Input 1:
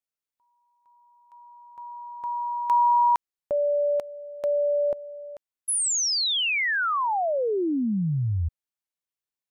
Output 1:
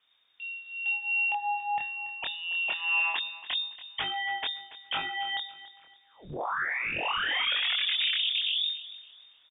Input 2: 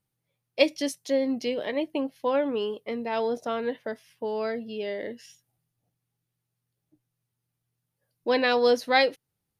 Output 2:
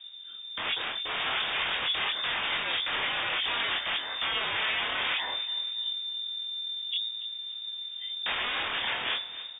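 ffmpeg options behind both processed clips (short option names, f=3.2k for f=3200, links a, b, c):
-filter_complex "[0:a]bandreject=f=50:t=h:w=6,bandreject=f=100:t=h:w=6,bandreject=f=150:t=h:w=6,bandreject=f=200:t=h:w=6,afftfilt=real='re*lt(hypot(re,im),0.2)':imag='im*lt(hypot(re,im),0.2)':win_size=1024:overlap=0.75,aemphasis=mode=reproduction:type=riaa,bandreject=f=410:w=12,dynaudnorm=f=350:g=3:m=6dB,asplit=2[a][b];[b]alimiter=limit=-23.5dB:level=0:latency=1:release=15,volume=3dB[c];[a][c]amix=inputs=2:normalize=0,acompressor=threshold=-24dB:ratio=6:attack=0.27:release=373:knee=6:detection=rms,aeval=exprs='0.0944*sin(PI/2*10*val(0)/0.0944)':c=same,flanger=delay=22.5:depth=3.6:speed=0.26,aecho=1:1:283|566|849:0.158|0.0539|0.0183,lowpass=f=3.1k:t=q:w=0.5098,lowpass=f=3.1k:t=q:w=0.6013,lowpass=f=3.1k:t=q:w=0.9,lowpass=f=3.1k:t=q:w=2.563,afreqshift=-3700,volume=-2dB"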